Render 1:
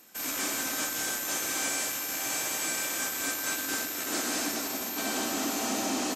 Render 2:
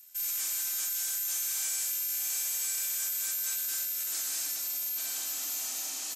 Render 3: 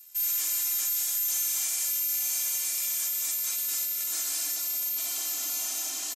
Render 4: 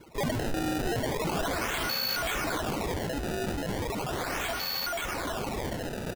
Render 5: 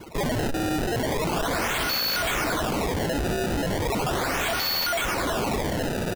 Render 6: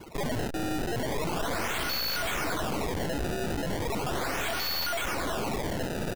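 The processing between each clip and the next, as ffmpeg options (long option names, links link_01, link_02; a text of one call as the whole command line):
ffmpeg -i in.wav -af "aderivative" out.wav
ffmpeg -i in.wav -af "aecho=1:1:2.9:0.99" out.wav
ffmpeg -i in.wav -af "acrusher=samples=23:mix=1:aa=0.000001:lfo=1:lforange=36.8:lforate=0.37,volume=-1.5dB" out.wav
ffmpeg -i in.wav -af "acrusher=bits=2:mode=log:mix=0:aa=0.000001,aeval=exprs='0.0376*(abs(mod(val(0)/0.0376+3,4)-2)-1)':channel_layout=same,volume=9dB" out.wav
ffmpeg -i in.wav -af "aeval=exprs='(tanh(25.1*val(0)+0.7)-tanh(0.7))/25.1':channel_layout=same" out.wav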